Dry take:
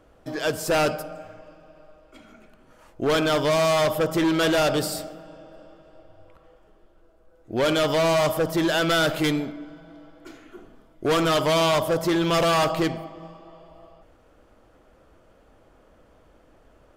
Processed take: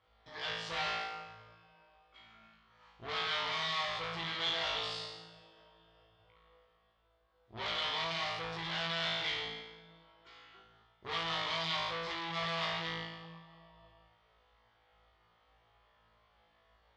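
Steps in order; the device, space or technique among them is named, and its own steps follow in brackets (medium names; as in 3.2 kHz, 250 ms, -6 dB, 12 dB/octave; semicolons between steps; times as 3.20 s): flutter echo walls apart 3.1 m, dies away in 0.94 s; scooped metal amplifier (valve stage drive 21 dB, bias 0.65; cabinet simulation 100–3700 Hz, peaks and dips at 140 Hz -9 dB, 580 Hz -8 dB, 1.5 kHz -9 dB, 2.6 kHz -8 dB; amplifier tone stack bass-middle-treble 10-0-10); trim +1.5 dB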